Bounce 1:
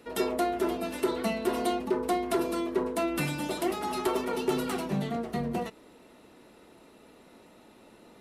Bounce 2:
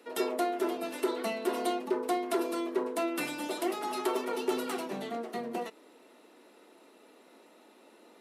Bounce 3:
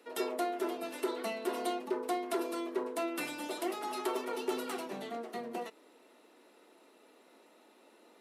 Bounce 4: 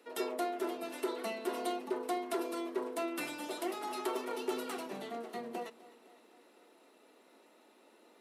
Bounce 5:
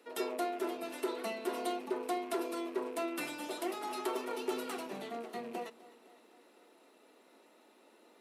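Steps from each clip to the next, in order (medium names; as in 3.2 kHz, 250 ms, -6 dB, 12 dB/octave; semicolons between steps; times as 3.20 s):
high-pass 260 Hz 24 dB/octave; trim -2 dB
bass shelf 160 Hz -7 dB; trim -3 dB
thinning echo 255 ms, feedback 60%, high-pass 150 Hz, level -19 dB; trim -1.5 dB
rattle on loud lows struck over -53 dBFS, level -47 dBFS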